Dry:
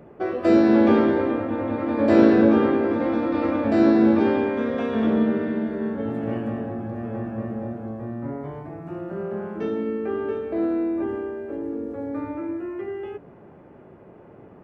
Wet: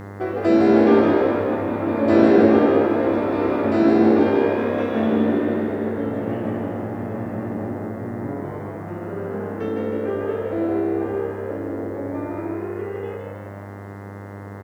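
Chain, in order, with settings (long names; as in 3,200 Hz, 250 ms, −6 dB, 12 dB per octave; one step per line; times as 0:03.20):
echo with shifted repeats 157 ms, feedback 52%, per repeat +67 Hz, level −4 dB
bit reduction 10 bits
hum with harmonics 100 Hz, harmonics 21, −36 dBFS −5 dB per octave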